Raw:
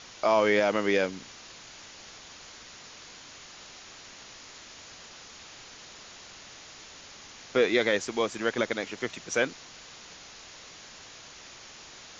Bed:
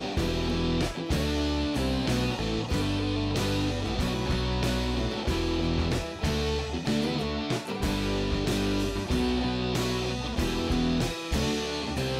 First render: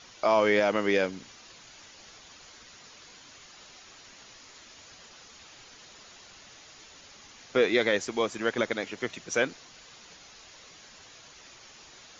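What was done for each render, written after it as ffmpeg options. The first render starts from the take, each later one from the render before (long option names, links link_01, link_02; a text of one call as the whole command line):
ffmpeg -i in.wav -af "afftdn=noise_reduction=6:noise_floor=-48" out.wav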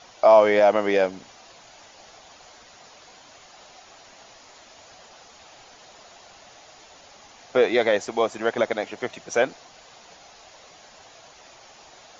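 ffmpeg -i in.wav -af "equalizer=frequency=710:width=1.5:gain=12" out.wav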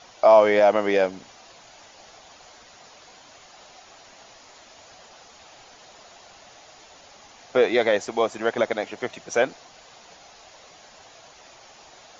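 ffmpeg -i in.wav -af anull out.wav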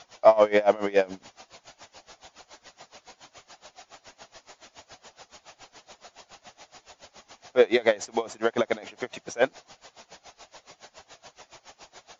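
ffmpeg -i in.wav -filter_complex "[0:a]asplit=2[link_01][link_02];[link_02]asoftclip=type=tanh:threshold=-13.5dB,volume=-7dB[link_03];[link_01][link_03]amix=inputs=2:normalize=0,aeval=exprs='val(0)*pow(10,-22*(0.5-0.5*cos(2*PI*7.1*n/s))/20)':channel_layout=same" out.wav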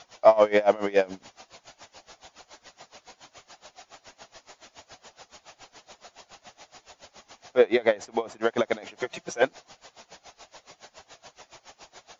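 ffmpeg -i in.wav -filter_complex "[0:a]asettb=1/sr,asplit=3[link_01][link_02][link_03];[link_01]atrim=end=7.584[link_04];[link_02]atrim=start=7.58:end=8.41,asetpts=PTS-STARTPTS,afade=type=in:duration=0.004:curve=qsin,afade=type=out:start_time=0.826:duration=0.004:curve=qsin,highshelf=frequency=4600:gain=-10.5[link_05];[link_03]atrim=start=8.406[link_06];[link_04][link_05]acrossfade=duration=0.004:curve1=hsin:curve2=qsin[link_07];[link_07][link_06]acrossfade=duration=0.004:curve1=qsin:curve2=hsin,asettb=1/sr,asplit=3[link_08][link_09][link_10];[link_08]atrim=end=8.994[link_11];[link_09]atrim=start=8.99:end=9.43,asetpts=PTS-STARTPTS,afade=type=in:duration=0.004:curve=qsin,afade=type=out:start_time=0.436:duration=0.004:curve=qsin,aecho=1:1:5.8:0.71,atrim=end_sample=19404[link_12];[link_10]atrim=start=9.426[link_13];[link_11][link_12]acrossfade=duration=0.004:curve1=hsin:curve2=qsin[link_14];[link_14][link_13]acrossfade=duration=0.004:curve1=qsin:curve2=hsin" out.wav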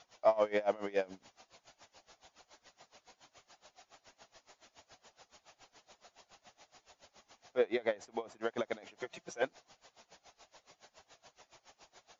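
ffmpeg -i in.wav -af "volume=-11.5dB" out.wav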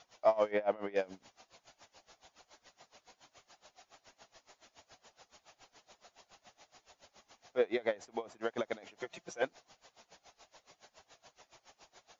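ffmpeg -i in.wav -filter_complex "[0:a]asettb=1/sr,asplit=3[link_01][link_02][link_03];[link_01]atrim=end=0.514[link_04];[link_02]atrim=start=0.51:end=0.96,asetpts=PTS-STARTPTS,afade=type=in:duration=0.004:curve=qsin,afade=type=out:start_time=0.446:duration=0.004:curve=qsin,lowpass=2900[link_05];[link_03]atrim=start=0.956[link_06];[link_04][link_05]acrossfade=duration=0.004:curve1=hsin:curve2=qsin[link_07];[link_07][link_06]acrossfade=duration=0.004:curve1=qsin:curve2=hsin" out.wav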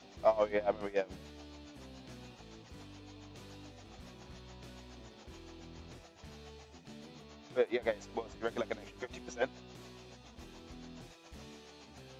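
ffmpeg -i in.wav -i bed.wav -filter_complex "[1:a]volume=-24.5dB[link_01];[0:a][link_01]amix=inputs=2:normalize=0" out.wav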